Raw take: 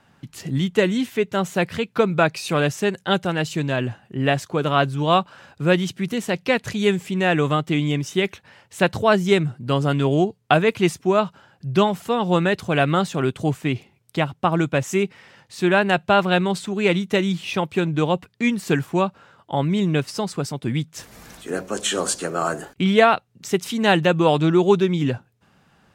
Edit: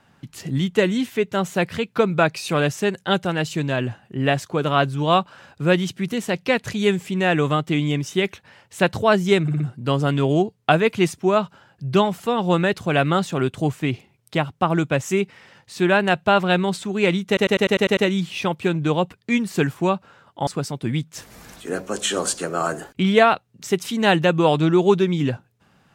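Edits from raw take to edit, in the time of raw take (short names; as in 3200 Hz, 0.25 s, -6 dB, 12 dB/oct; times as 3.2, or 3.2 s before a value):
9.42 stutter 0.06 s, 4 plays
17.09 stutter 0.10 s, 8 plays
19.59–20.28 cut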